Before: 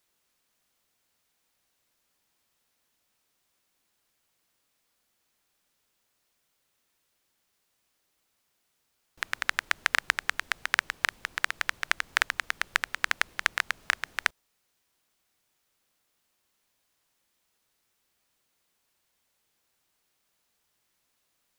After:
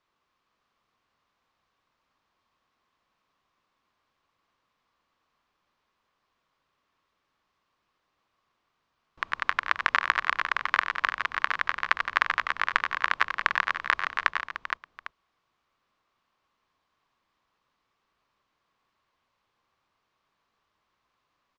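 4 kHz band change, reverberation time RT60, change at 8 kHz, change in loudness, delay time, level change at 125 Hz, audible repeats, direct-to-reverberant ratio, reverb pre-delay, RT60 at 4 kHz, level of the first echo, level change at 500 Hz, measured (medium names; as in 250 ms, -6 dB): -2.0 dB, no reverb, under -10 dB, +2.0 dB, 93 ms, no reading, 5, no reverb, no reverb, no reverb, -10.5 dB, +2.5 dB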